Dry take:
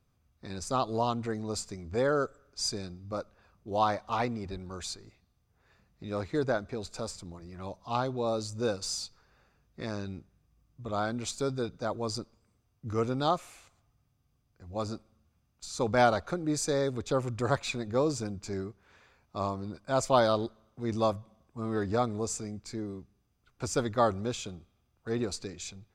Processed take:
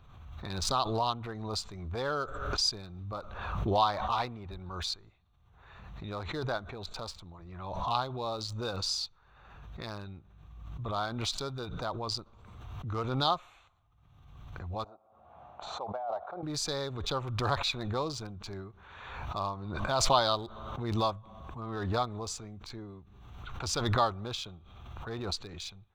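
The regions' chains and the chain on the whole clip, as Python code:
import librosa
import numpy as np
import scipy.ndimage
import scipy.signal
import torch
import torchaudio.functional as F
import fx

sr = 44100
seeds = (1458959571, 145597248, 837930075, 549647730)

y = fx.chain(x, sr, fx.bandpass_q(hz=690.0, q=4.2),
    fx.over_compress(threshold_db=-32.0, ratio=-1.0), at=(14.84, 16.43))
y = fx.wiener(y, sr, points=9)
y = fx.graphic_eq_10(y, sr, hz=(125, 250, 500, 1000, 2000, 4000, 8000), db=(-3, -9, -7, 4, -6, 11, -8))
y = fx.pre_swell(y, sr, db_per_s=39.0)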